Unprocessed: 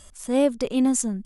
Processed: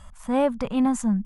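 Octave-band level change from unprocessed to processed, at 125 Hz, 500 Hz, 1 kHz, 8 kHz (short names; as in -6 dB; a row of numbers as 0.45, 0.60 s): n/a, -2.0 dB, +6.5 dB, -10.5 dB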